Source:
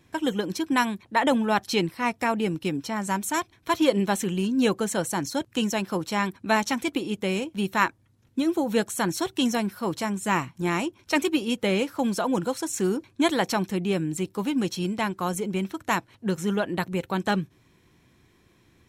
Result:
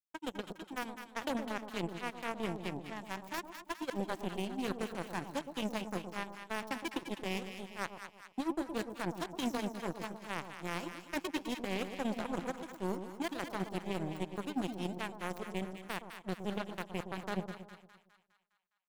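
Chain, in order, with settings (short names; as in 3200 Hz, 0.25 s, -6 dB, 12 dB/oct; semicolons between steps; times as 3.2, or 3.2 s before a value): tracing distortion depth 0.12 ms; HPF 110 Hz 24 dB/oct; low shelf 310 Hz +6.5 dB; power-law curve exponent 3; reverse; compressor 16:1, threshold -42 dBFS, peak gain reduction 25 dB; reverse; limiter -35 dBFS, peak gain reduction 10 dB; split-band echo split 1000 Hz, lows 0.115 s, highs 0.205 s, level -8 dB; gain +12.5 dB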